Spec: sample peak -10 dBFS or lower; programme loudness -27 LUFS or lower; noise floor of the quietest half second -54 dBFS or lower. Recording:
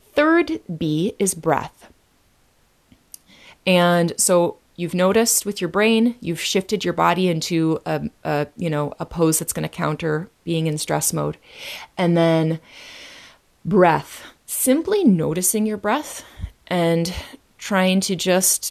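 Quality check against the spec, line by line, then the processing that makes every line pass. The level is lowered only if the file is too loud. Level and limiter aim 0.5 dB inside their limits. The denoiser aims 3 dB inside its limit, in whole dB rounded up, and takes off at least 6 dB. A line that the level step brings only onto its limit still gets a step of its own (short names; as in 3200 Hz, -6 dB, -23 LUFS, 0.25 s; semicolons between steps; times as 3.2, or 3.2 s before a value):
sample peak -3.5 dBFS: fail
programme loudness -20.0 LUFS: fail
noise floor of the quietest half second -59 dBFS: OK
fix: gain -7.5 dB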